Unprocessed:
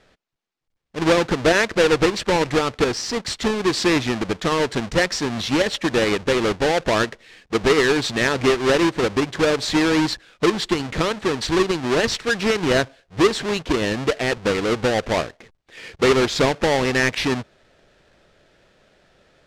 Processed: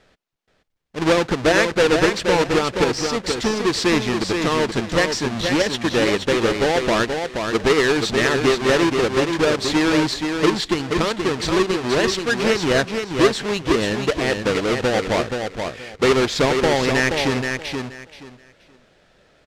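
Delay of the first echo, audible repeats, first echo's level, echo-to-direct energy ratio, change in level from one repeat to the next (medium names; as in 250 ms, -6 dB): 477 ms, 3, -5.5 dB, -5.5 dB, -13.5 dB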